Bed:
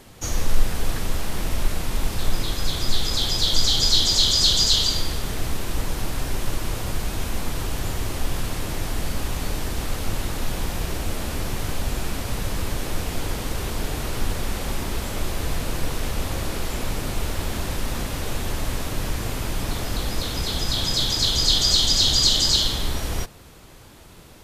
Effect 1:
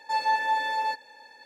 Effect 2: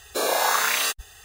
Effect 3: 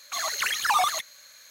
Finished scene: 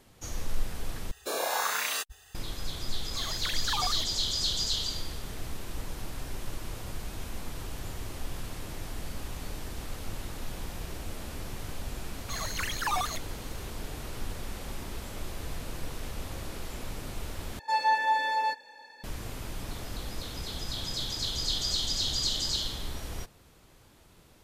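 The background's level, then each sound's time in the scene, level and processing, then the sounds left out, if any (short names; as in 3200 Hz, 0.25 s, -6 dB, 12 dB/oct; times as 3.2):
bed -11.5 dB
1.11 replace with 2 -8 dB
3.03 add 3 -10.5 dB
12.17 add 3 -7.5 dB
17.59 replace with 1 -0.5 dB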